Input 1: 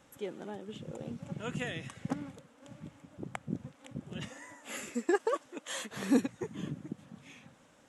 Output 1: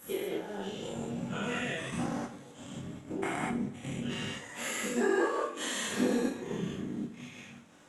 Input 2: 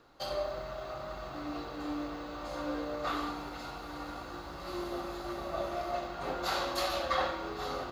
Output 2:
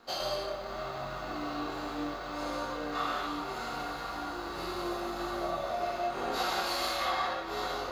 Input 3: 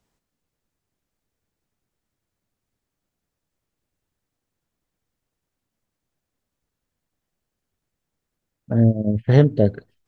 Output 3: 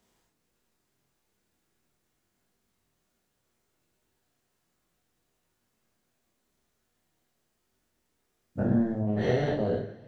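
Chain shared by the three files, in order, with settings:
every bin's largest magnitude spread in time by 240 ms
low-shelf EQ 81 Hz −10.5 dB
transient designer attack +6 dB, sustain −9 dB
downward compressor 2 to 1, threshold −33 dBFS
multi-voice chorus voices 4, 0.36 Hz, delay 25 ms, depth 4.7 ms
coupled-rooms reverb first 0.45 s, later 3.2 s, from −22 dB, DRR 3.5 dB
level +2 dB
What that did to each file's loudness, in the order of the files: +3.0, +2.5, −9.5 LU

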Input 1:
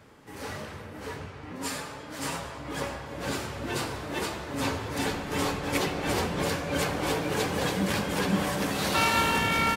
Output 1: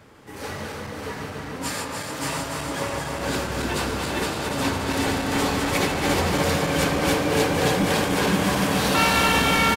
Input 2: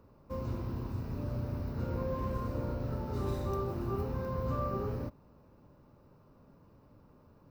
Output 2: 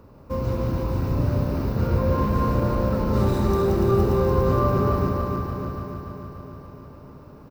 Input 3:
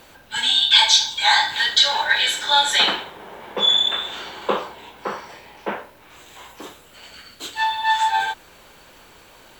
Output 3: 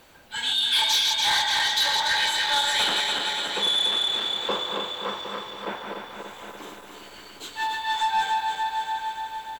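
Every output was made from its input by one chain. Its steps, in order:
feedback delay that plays each chunk backwards 145 ms, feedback 80%, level −4 dB
single-tap delay 760 ms −12.5 dB
soft clipping −10.5 dBFS
loudness normalisation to −23 LKFS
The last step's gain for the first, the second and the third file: +4.0, +11.0, −6.0 decibels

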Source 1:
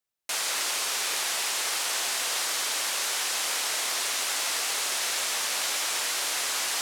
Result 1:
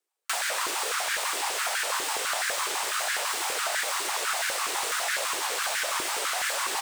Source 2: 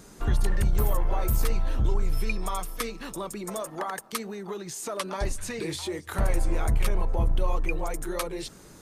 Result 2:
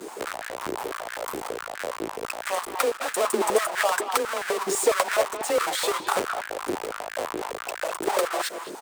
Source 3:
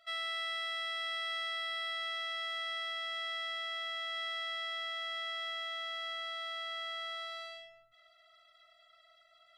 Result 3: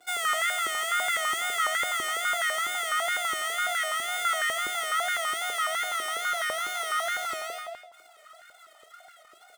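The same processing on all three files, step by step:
each half-wave held at its own peak
tape wow and flutter 130 cents
frequency shifter +20 Hz
downward compressor 6 to 1, threshold −27 dBFS
parametric band 8,400 Hz +6 dB 0.39 octaves
far-end echo of a speakerphone 210 ms, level −8 dB
high-pass on a step sequencer 12 Hz 360–1,600 Hz
loudness normalisation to −27 LKFS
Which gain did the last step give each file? −2.0, +4.5, +2.5 decibels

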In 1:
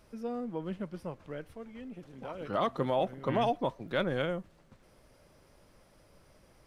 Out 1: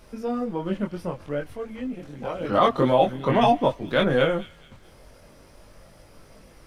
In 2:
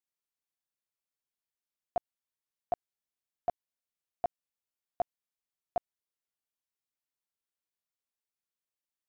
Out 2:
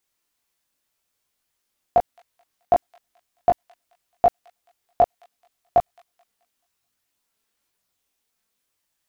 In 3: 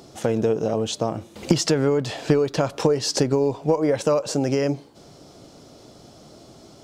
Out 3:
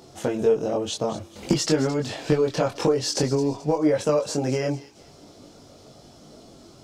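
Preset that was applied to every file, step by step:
multi-voice chorus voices 4, 0.49 Hz, delay 22 ms, depth 2.3 ms
delay with a high-pass on its return 216 ms, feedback 37%, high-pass 2,800 Hz, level −13 dB
loudness normalisation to −24 LKFS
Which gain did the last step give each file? +13.0, +19.5, +1.5 decibels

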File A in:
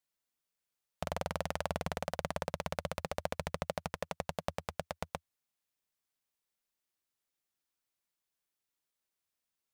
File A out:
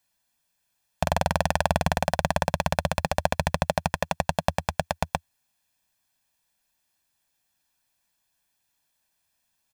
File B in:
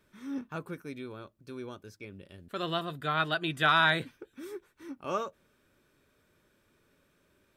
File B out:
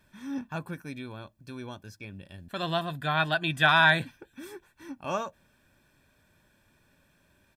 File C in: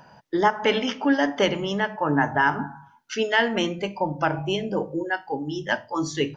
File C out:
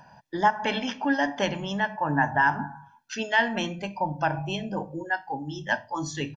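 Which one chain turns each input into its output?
comb filter 1.2 ms, depth 57%
loudness normalisation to −27 LKFS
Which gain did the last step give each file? +11.5, +3.0, −4.0 decibels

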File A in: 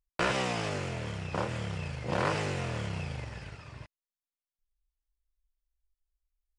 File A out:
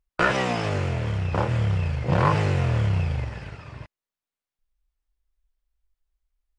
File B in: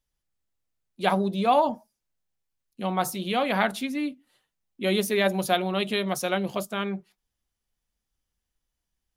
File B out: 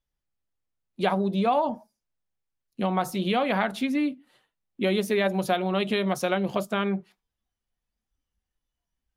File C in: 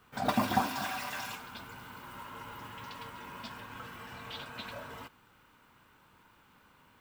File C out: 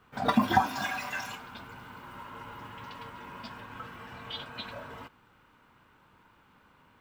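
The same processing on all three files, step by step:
noise reduction from a noise print of the clip's start 9 dB
high-shelf EQ 4,400 Hz −10 dB
downward compressor 3 to 1, threshold −30 dBFS
normalise the peak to −9 dBFS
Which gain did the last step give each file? +15.5, +7.0, +11.0 decibels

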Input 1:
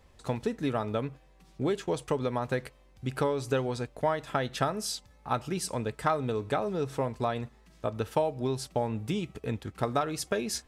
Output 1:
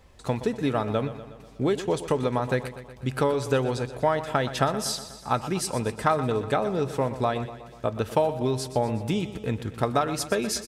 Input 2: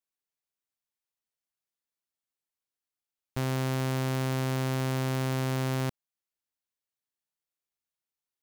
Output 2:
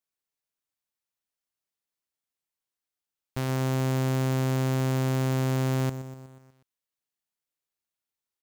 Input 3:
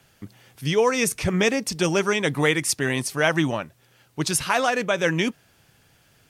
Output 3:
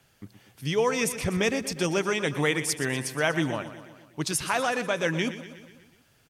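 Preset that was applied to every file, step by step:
repeating echo 122 ms, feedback 59%, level −13 dB
loudness normalisation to −27 LKFS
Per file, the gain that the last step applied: +4.5, +0.5, −4.5 decibels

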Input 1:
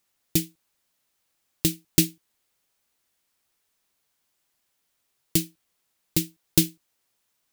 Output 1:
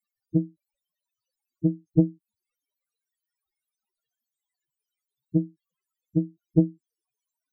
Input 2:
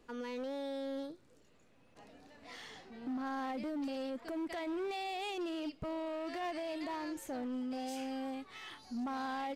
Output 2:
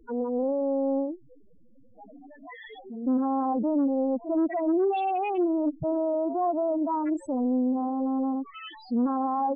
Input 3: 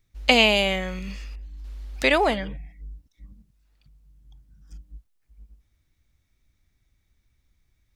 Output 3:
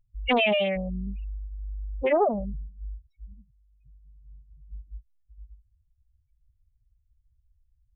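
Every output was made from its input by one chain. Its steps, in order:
spectral peaks only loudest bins 4
highs frequency-modulated by the lows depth 0.34 ms
loudness normalisation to −27 LKFS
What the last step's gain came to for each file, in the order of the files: +6.0, +14.5, +2.0 decibels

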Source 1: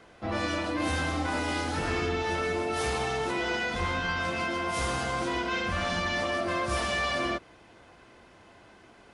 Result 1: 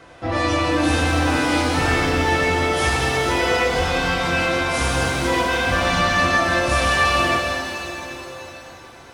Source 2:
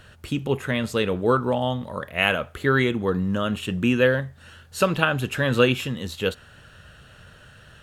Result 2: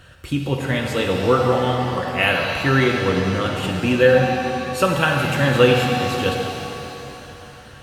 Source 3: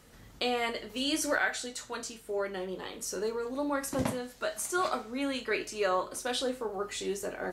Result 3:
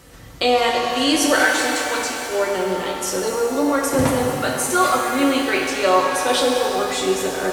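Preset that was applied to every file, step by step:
notch comb filter 210 Hz
reverb with rising layers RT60 3.1 s, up +7 semitones, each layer −8 dB, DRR 1 dB
loudness normalisation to −19 LKFS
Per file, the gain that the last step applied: +9.0, +2.5, +12.0 decibels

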